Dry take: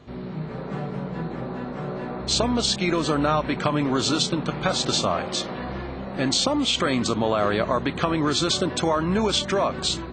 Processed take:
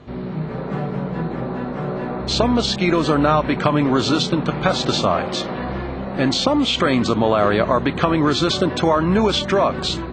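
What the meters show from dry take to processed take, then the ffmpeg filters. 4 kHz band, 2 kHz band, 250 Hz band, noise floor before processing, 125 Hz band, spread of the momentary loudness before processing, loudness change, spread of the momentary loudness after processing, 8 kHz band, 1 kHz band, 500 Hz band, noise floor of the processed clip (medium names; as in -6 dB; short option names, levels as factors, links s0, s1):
+2.0 dB, +4.5 dB, +6.0 dB, -34 dBFS, +6.0 dB, 10 LU, +4.5 dB, 9 LU, -4.0 dB, +5.5 dB, +5.5 dB, -28 dBFS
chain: -filter_complex "[0:a]acrossover=split=6400[s0][s1];[s1]acompressor=threshold=0.00891:ratio=4:attack=1:release=60[s2];[s0][s2]amix=inputs=2:normalize=0,aemphasis=mode=reproduction:type=cd,volume=1.88"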